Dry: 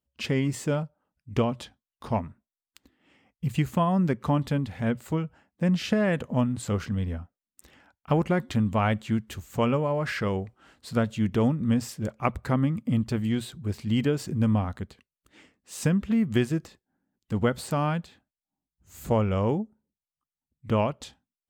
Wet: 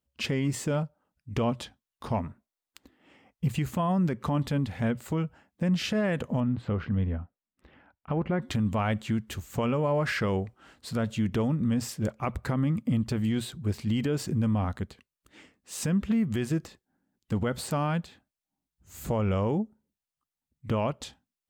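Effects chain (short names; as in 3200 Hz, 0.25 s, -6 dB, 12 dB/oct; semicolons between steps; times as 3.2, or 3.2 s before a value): 2.24–3.55 bell 640 Hz +4.5 dB 2.3 oct; limiter -20 dBFS, peak gain reduction 10 dB; 6.4–8.42 air absorption 380 m; gain +1.5 dB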